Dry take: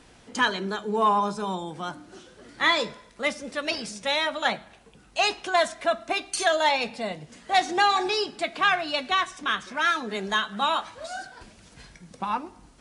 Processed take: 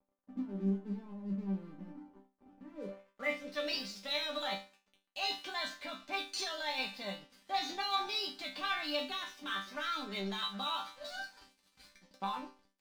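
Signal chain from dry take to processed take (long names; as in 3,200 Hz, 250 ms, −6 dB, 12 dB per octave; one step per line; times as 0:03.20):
in parallel at 0 dB: compressor whose output falls as the input rises −29 dBFS, ratio −0.5
on the sum: low-pass filter sweep 260 Hz → 4,500 Hz, 0:02.71–0:03.47
dead-zone distortion −38 dBFS
resonators tuned to a chord G3 sus4, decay 0.3 s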